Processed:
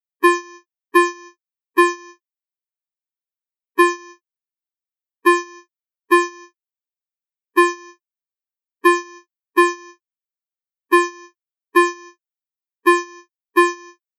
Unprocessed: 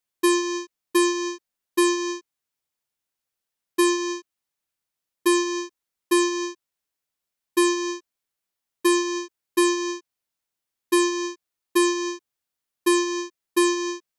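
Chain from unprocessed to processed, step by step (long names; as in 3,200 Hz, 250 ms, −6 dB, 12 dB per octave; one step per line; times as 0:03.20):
spectral dynamics exaggerated over time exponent 3
octave-band graphic EQ 1,000/2,000/4,000/8,000 Hz +7/+10/−9/−7 dB
level +5.5 dB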